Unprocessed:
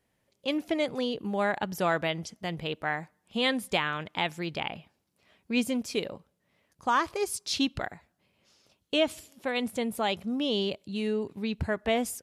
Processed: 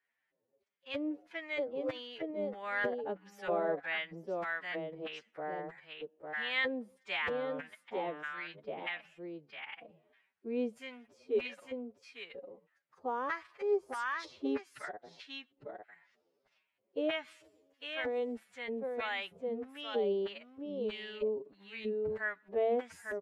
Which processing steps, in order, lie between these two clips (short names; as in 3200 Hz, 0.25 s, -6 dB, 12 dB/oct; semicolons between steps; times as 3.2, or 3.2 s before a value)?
echo 0.449 s -4.5 dB; LFO band-pass square 3 Hz 460–1800 Hz; time stretch by phase-locked vocoder 1.9×